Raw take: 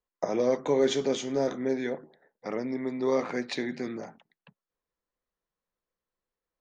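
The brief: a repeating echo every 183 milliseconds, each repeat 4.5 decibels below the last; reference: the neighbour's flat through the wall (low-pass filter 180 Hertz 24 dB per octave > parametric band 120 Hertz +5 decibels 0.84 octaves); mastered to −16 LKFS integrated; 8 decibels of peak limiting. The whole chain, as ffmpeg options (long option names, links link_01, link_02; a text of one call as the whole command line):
ffmpeg -i in.wav -af "alimiter=limit=-21dB:level=0:latency=1,lowpass=frequency=180:width=0.5412,lowpass=frequency=180:width=1.3066,equalizer=frequency=120:width_type=o:width=0.84:gain=5,aecho=1:1:183|366|549|732|915|1098|1281|1464|1647:0.596|0.357|0.214|0.129|0.0772|0.0463|0.0278|0.0167|0.01,volume=28.5dB" out.wav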